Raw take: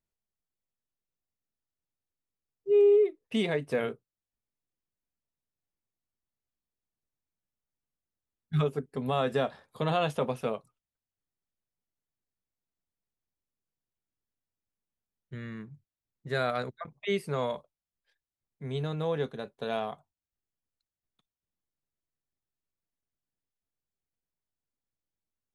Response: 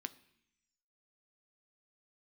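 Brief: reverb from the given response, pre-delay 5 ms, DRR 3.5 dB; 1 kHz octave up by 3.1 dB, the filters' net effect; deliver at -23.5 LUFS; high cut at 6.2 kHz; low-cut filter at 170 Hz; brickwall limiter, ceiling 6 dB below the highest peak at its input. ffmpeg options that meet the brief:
-filter_complex "[0:a]highpass=170,lowpass=6200,equalizer=f=1000:t=o:g=4.5,alimiter=limit=0.106:level=0:latency=1,asplit=2[s0][s1];[1:a]atrim=start_sample=2205,adelay=5[s2];[s1][s2]afir=irnorm=-1:irlink=0,volume=0.891[s3];[s0][s3]amix=inputs=2:normalize=0,volume=2.24"

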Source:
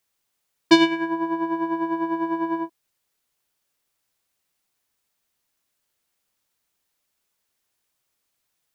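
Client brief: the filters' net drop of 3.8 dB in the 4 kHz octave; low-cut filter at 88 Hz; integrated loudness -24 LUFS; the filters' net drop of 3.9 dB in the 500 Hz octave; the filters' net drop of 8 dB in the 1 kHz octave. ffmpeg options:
-af "highpass=88,equalizer=f=500:t=o:g=-7,equalizer=f=1000:t=o:g=-6.5,equalizer=f=4000:t=o:g=-4.5,volume=1.41"

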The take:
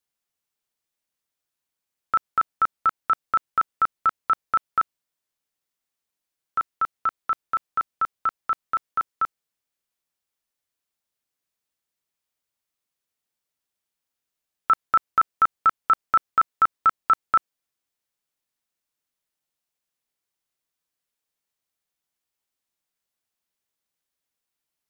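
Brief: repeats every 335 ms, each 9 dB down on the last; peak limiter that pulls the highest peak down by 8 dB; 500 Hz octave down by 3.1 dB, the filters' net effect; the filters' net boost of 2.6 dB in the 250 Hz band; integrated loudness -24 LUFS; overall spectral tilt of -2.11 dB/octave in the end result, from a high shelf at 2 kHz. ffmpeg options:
-af "equalizer=f=250:t=o:g=5,equalizer=f=500:t=o:g=-5,highshelf=f=2000:g=-3.5,alimiter=limit=0.1:level=0:latency=1,aecho=1:1:335|670|1005|1340:0.355|0.124|0.0435|0.0152,volume=2.11"

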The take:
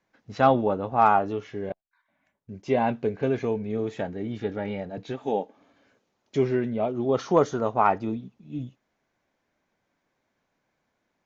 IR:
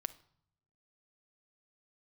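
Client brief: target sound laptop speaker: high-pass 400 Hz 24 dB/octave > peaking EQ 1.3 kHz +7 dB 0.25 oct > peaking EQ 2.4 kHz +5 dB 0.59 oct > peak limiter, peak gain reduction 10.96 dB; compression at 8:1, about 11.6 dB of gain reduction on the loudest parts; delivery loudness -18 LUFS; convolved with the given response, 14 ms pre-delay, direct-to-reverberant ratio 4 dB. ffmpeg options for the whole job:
-filter_complex "[0:a]acompressor=threshold=0.0501:ratio=8,asplit=2[s0][s1];[1:a]atrim=start_sample=2205,adelay=14[s2];[s1][s2]afir=irnorm=-1:irlink=0,volume=0.75[s3];[s0][s3]amix=inputs=2:normalize=0,highpass=f=400:w=0.5412,highpass=f=400:w=1.3066,equalizer=f=1300:t=o:w=0.25:g=7,equalizer=f=2400:t=o:w=0.59:g=5,volume=8.91,alimiter=limit=0.447:level=0:latency=1"

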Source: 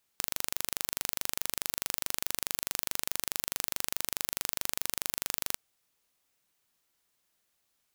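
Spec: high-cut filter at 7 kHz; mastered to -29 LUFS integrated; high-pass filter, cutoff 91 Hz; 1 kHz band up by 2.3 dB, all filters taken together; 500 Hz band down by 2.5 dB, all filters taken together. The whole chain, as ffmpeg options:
-af "highpass=91,lowpass=7000,equalizer=f=500:t=o:g=-4.5,equalizer=f=1000:t=o:g=4,volume=2.66"

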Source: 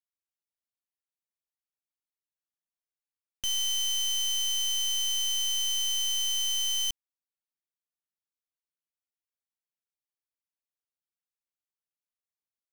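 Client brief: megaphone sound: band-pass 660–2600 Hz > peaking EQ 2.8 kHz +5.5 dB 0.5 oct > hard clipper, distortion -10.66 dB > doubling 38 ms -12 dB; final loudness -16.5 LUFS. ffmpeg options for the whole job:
-filter_complex "[0:a]highpass=660,lowpass=2600,equalizer=f=2800:t=o:w=0.5:g=5.5,asoftclip=type=hard:threshold=0.015,asplit=2[s0][s1];[s1]adelay=38,volume=0.251[s2];[s0][s2]amix=inputs=2:normalize=0,volume=9.44"

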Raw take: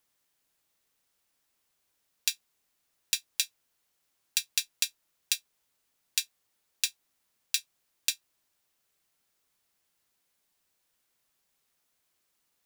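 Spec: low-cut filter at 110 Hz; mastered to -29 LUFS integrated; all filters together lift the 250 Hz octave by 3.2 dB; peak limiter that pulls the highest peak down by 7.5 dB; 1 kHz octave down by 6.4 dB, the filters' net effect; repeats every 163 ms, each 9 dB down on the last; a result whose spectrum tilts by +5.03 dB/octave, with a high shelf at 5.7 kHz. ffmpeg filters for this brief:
-af "highpass=110,equalizer=f=250:t=o:g=5,equalizer=f=1000:t=o:g=-9,highshelf=f=5700:g=-5,alimiter=limit=0.188:level=0:latency=1,aecho=1:1:163|326|489|652:0.355|0.124|0.0435|0.0152,volume=3.98"

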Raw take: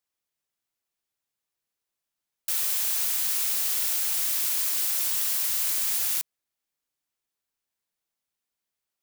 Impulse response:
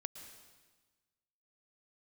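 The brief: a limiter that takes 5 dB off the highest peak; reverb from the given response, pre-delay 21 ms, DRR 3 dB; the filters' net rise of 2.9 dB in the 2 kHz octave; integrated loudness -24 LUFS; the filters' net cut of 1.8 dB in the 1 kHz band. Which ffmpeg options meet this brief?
-filter_complex "[0:a]equalizer=f=1000:t=o:g=-4,equalizer=f=2000:t=o:g=4.5,alimiter=limit=0.133:level=0:latency=1,asplit=2[s0][s1];[1:a]atrim=start_sample=2205,adelay=21[s2];[s1][s2]afir=irnorm=-1:irlink=0,volume=1[s3];[s0][s3]amix=inputs=2:normalize=0,volume=0.891"

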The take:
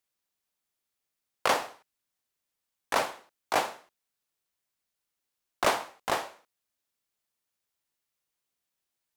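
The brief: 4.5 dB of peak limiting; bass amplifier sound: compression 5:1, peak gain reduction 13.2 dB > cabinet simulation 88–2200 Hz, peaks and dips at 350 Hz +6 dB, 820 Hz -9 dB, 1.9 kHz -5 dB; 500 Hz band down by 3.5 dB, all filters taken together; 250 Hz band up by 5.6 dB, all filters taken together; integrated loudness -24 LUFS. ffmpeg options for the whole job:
-af "equalizer=f=250:t=o:g=6.5,equalizer=f=500:t=o:g=-5.5,alimiter=limit=0.158:level=0:latency=1,acompressor=threshold=0.0126:ratio=5,highpass=f=88:w=0.5412,highpass=f=88:w=1.3066,equalizer=f=350:t=q:w=4:g=6,equalizer=f=820:t=q:w=4:g=-9,equalizer=f=1900:t=q:w=4:g=-5,lowpass=f=2200:w=0.5412,lowpass=f=2200:w=1.3066,volume=15"

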